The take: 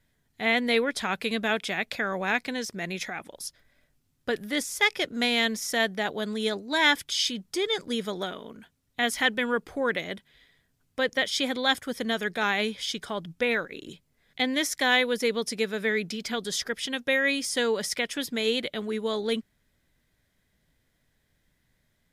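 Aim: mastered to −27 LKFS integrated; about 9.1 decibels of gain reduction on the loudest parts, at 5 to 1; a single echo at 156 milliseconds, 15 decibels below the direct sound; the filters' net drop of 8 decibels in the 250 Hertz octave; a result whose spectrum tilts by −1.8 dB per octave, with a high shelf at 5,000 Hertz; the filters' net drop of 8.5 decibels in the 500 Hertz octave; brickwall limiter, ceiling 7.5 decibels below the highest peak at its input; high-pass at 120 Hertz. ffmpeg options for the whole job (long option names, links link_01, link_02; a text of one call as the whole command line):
ffmpeg -i in.wav -af "highpass=120,equalizer=frequency=250:width_type=o:gain=-7,equalizer=frequency=500:width_type=o:gain=-8,highshelf=frequency=5000:gain=-7,acompressor=threshold=-29dB:ratio=5,alimiter=limit=-24dB:level=0:latency=1,aecho=1:1:156:0.178,volume=8.5dB" out.wav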